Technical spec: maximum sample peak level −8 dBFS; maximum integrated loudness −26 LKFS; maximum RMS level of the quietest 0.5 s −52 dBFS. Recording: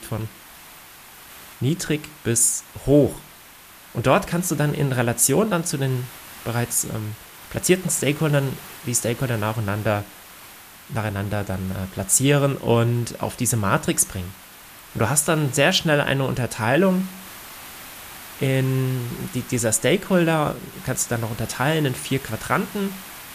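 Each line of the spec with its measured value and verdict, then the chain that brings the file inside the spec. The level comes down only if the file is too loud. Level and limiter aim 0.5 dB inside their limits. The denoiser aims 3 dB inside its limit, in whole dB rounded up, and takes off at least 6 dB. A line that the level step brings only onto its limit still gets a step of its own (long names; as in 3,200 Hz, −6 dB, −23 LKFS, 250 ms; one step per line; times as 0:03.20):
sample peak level −3.5 dBFS: out of spec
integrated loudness −22.0 LKFS: out of spec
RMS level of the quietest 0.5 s −46 dBFS: out of spec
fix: broadband denoise 6 dB, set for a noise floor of −46 dBFS
level −4.5 dB
brickwall limiter −8.5 dBFS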